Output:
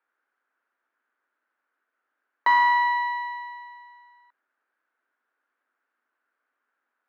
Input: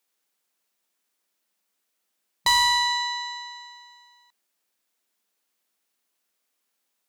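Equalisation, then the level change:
Butterworth high-pass 230 Hz 96 dB per octave
low-pass with resonance 1,500 Hz, resonance Q 4.6
high-frequency loss of the air 54 metres
0.0 dB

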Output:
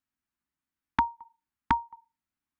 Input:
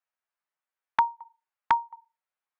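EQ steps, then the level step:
parametric band 65 Hz +11.5 dB 0.62 octaves
low shelf with overshoot 370 Hz +11 dB, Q 3
−1.0 dB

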